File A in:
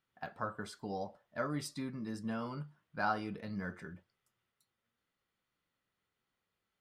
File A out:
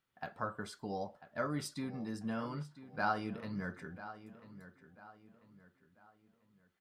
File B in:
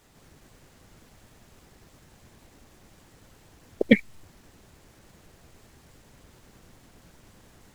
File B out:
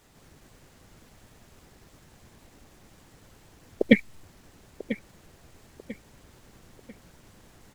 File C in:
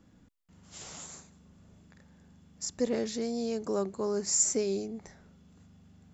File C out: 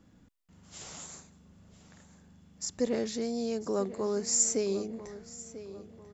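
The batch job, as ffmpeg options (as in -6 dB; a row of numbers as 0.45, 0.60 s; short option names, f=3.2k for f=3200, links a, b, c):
-filter_complex "[0:a]asplit=2[a][b];[b]adelay=993,lowpass=f=4k:p=1,volume=-14dB,asplit=2[c][d];[d]adelay=993,lowpass=f=4k:p=1,volume=0.39,asplit=2[e][f];[f]adelay=993,lowpass=f=4k:p=1,volume=0.39,asplit=2[g][h];[h]adelay=993,lowpass=f=4k:p=1,volume=0.39[i];[a][c][e][g][i]amix=inputs=5:normalize=0"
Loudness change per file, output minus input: 0.0, -3.5, -0.5 LU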